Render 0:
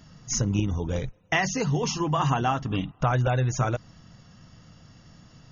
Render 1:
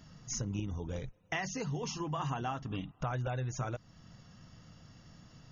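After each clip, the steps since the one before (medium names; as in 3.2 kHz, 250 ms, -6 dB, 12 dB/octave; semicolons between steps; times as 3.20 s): compression 1.5:1, threshold -41 dBFS, peak gain reduction 8 dB; trim -4.5 dB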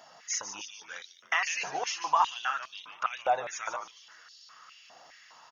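on a send: frequency-shifting echo 147 ms, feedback 48%, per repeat -150 Hz, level -9 dB; on the sum: step-sequenced high-pass 4.9 Hz 720–4200 Hz; trim +5.5 dB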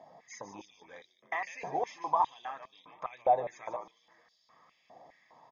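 boxcar filter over 31 samples; trim +5.5 dB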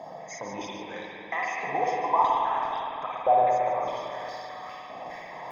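reverse; upward compressor, threshold -34 dBFS; reverse; spring tank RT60 3.2 s, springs 51/55 ms, chirp 65 ms, DRR -2.5 dB; trim +3 dB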